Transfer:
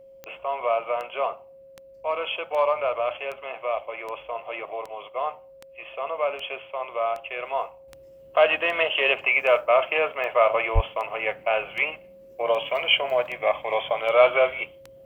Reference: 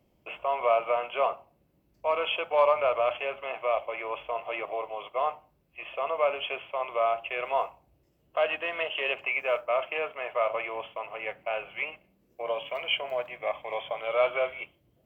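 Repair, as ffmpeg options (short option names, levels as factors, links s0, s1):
-filter_complex "[0:a]adeclick=t=4,bandreject=f=540:w=30,asplit=3[s0][s1][s2];[s0]afade=t=out:st=10.74:d=0.02[s3];[s1]highpass=f=140:w=0.5412,highpass=f=140:w=1.3066,afade=t=in:st=10.74:d=0.02,afade=t=out:st=10.86:d=0.02[s4];[s2]afade=t=in:st=10.86:d=0.02[s5];[s3][s4][s5]amix=inputs=3:normalize=0,asetnsamples=n=441:p=0,asendcmd='7.88 volume volume -8dB',volume=1"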